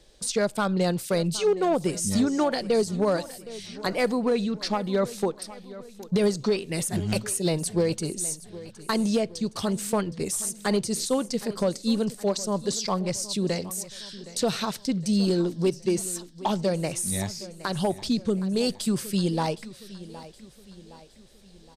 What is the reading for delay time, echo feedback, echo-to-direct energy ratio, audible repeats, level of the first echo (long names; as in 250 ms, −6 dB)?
766 ms, 48%, −16.0 dB, 3, −17.0 dB